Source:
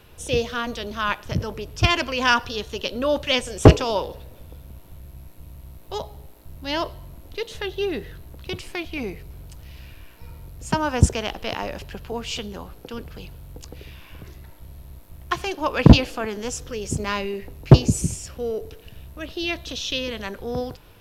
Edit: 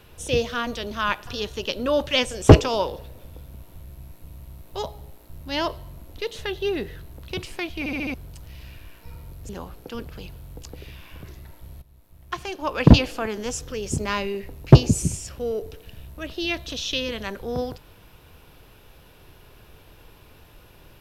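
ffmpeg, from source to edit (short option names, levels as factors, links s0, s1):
-filter_complex "[0:a]asplit=9[s0][s1][s2][s3][s4][s5][s6][s7][s8];[s0]atrim=end=1.272[s9];[s1]atrim=start=2.428:end=9.022[s10];[s2]atrim=start=8.948:end=9.022[s11];[s3]atrim=start=8.948:end=9.022[s12];[s4]atrim=start=8.948:end=9.022[s13];[s5]atrim=start=8.948:end=9.022[s14];[s6]atrim=start=9.298:end=10.652[s15];[s7]atrim=start=12.478:end=14.81,asetpts=PTS-STARTPTS,afade=t=out:st=2.328:d=0.004:c=hsin:silence=0.188365[s16];[s8]atrim=start=14.81,asetpts=PTS-STARTPTS,afade=t=in:d=1.34:silence=0.188365[s17];[s9][s10]acrossfade=d=0.004:c1=hsin:c2=hsin[s18];[s18][s11]acrossfade=d=0.004:c1=hsin:c2=hsin[s19];[s19][s12]acrossfade=d=0.004:c1=hsin:c2=hsin[s20];[s20][s13]acrossfade=d=0.004:c1=hsin:c2=hsin[s21];[s21][s14]acrossfade=d=0.004:c1=hsin:c2=hsin[s22];[s22][s15]acrossfade=d=0.004:c1=hsin:c2=hsin[s23];[s16][s17]concat=n=2:v=0:a=1[s24];[s23][s24]acrossfade=d=0.004:c1=hsin:c2=hsin"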